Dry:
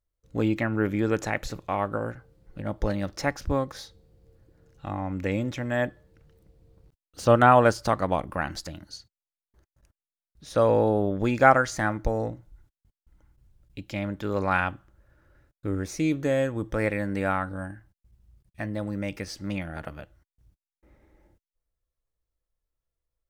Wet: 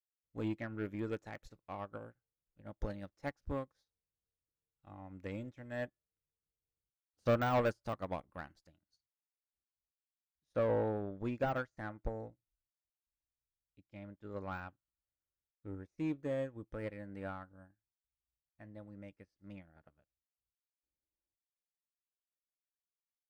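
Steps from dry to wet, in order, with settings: saturation -18.5 dBFS, distortion -9 dB; de-esser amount 80%; treble shelf 2.7 kHz -2 dB, from 10.55 s -9.5 dB; upward expansion 2.5:1, over -46 dBFS; trim -4.5 dB

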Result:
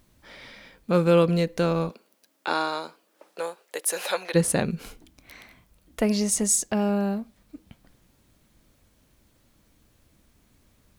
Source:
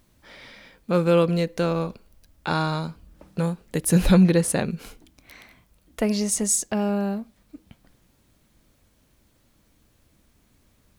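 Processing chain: 1.89–4.34 s: high-pass 230 Hz -> 610 Hz 24 dB/octave

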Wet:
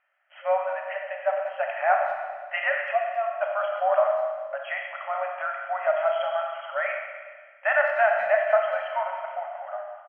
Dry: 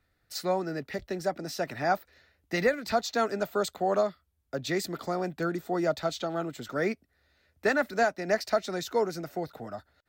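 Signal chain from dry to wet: 2.91–3.41 s: vowel filter a; FFT band-pass 540–3300 Hz; speakerphone echo 190 ms, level -26 dB; Schroeder reverb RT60 1.6 s, combs from 28 ms, DRR 1 dB; trim +4.5 dB

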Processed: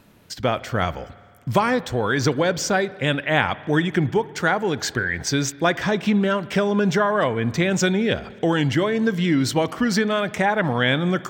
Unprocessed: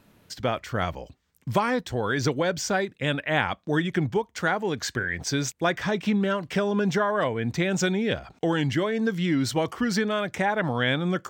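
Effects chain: reverse; upward compressor, threshold -46 dBFS; reverse; spring tank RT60 2 s, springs 53 ms, chirp 25 ms, DRR 17.5 dB; trim +4.5 dB

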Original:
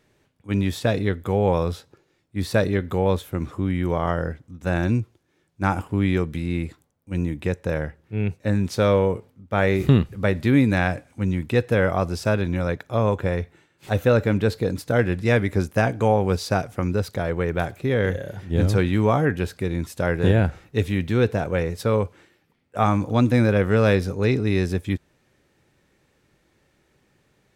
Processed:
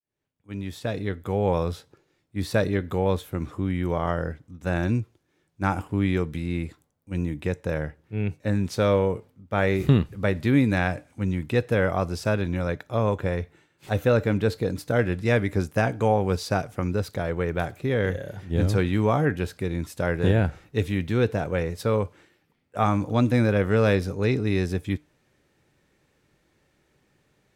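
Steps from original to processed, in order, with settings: fade-in on the opening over 1.56 s; feedback comb 150 Hz, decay 0.26 s, harmonics all, mix 30%

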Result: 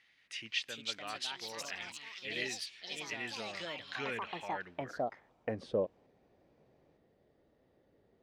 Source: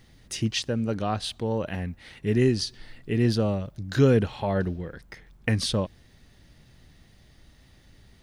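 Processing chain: band-pass sweep 2.3 kHz -> 480 Hz, 4.60–5.65 s; ever faster or slower copies 439 ms, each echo +4 st, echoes 3

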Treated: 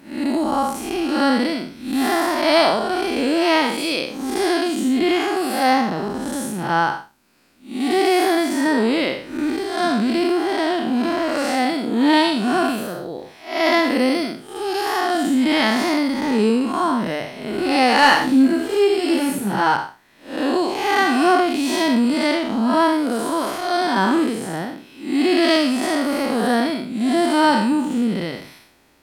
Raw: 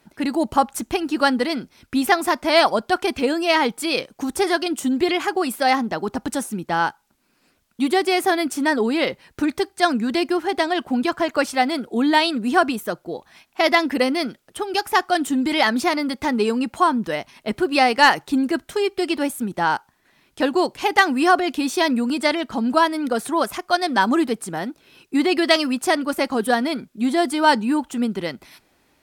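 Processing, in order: spectral blur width 195 ms; hum notches 50/100/150 Hz; 18.01–19.76 s: doubling 15 ms -3 dB; trim +6.5 dB

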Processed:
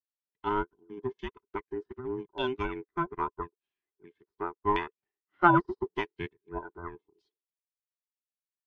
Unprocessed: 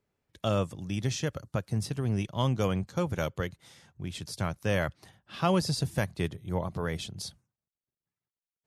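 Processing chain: every band turned upside down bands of 500 Hz; LFO low-pass saw down 0.84 Hz 900–3100 Hz; upward expansion 2.5:1, over -48 dBFS; trim +4 dB

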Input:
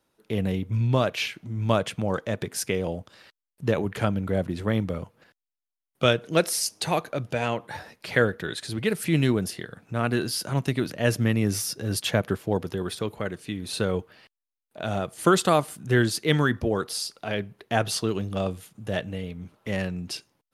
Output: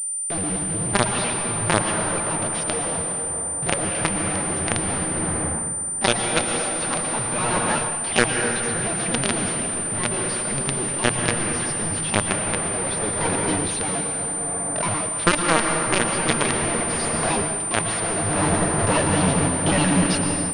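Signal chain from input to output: pitch shift switched off and on +7.5 st, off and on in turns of 62 ms; companded quantiser 2-bit; hum notches 60/120 Hz; on a send at -1.5 dB: reverberation RT60 4.4 s, pre-delay 103 ms; on the sum: level rider gain up to 8.5 dB; class-D stage that switches slowly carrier 9.1 kHz; trim -2 dB

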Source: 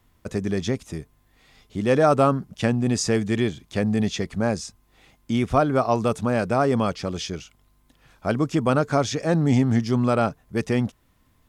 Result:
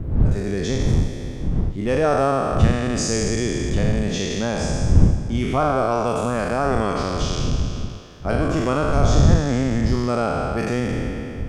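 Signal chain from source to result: spectral sustain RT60 2.39 s; wind noise 110 Hz -17 dBFS; dynamic bell 7.3 kHz, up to +6 dB, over -43 dBFS, Q 0.87; in parallel at +3 dB: compression, threshold -21 dBFS, peak gain reduction 18.5 dB; on the sum: treble shelf 4.2 kHz -7 dB; trim -7.5 dB

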